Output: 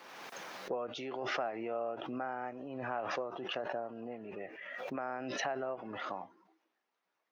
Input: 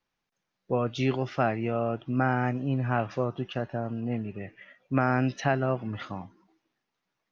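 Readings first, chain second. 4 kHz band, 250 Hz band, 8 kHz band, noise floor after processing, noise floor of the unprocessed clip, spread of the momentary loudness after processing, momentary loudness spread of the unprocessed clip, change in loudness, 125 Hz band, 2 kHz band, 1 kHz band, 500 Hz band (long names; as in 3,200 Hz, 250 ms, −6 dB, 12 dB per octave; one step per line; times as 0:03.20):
−1.0 dB, −14.5 dB, can't be measured, −84 dBFS, −84 dBFS, 9 LU, 11 LU, −10.5 dB, −25.5 dB, −7.0 dB, −8.0 dB, −7.5 dB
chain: high-shelf EQ 2,300 Hz −9.5 dB
downward compressor 6 to 1, threshold −36 dBFS, peak gain reduction 15.5 dB
dynamic equaliser 660 Hz, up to +4 dB, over −54 dBFS, Q 0.94
high-pass filter 440 Hz 12 dB per octave
background raised ahead of every attack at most 29 dB per second
level +2 dB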